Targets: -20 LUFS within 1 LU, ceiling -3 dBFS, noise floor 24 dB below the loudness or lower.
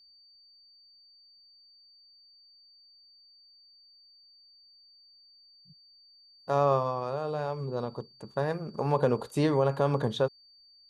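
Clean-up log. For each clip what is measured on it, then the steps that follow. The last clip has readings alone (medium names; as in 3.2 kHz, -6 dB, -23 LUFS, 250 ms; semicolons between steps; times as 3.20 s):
steady tone 4.6 kHz; tone level -56 dBFS; loudness -29.5 LUFS; peak level -11.5 dBFS; loudness target -20.0 LUFS
-> band-stop 4.6 kHz, Q 30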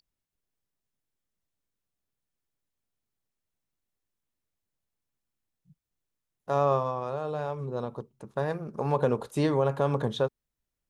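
steady tone not found; loudness -29.5 LUFS; peak level -11.5 dBFS; loudness target -20.0 LUFS
-> trim +9.5 dB; peak limiter -3 dBFS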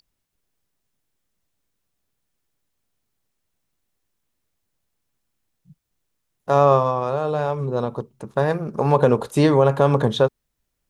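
loudness -20.0 LUFS; peak level -3.0 dBFS; noise floor -77 dBFS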